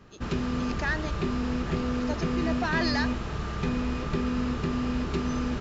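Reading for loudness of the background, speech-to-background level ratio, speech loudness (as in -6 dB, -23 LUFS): -30.0 LUFS, -2.0 dB, -32.0 LUFS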